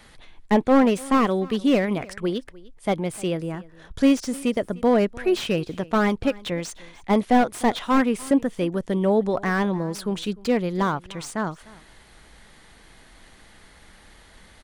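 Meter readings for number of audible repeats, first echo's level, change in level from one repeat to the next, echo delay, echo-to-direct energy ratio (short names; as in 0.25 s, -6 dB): 1, -22.0 dB, no steady repeat, 0.301 s, -22.0 dB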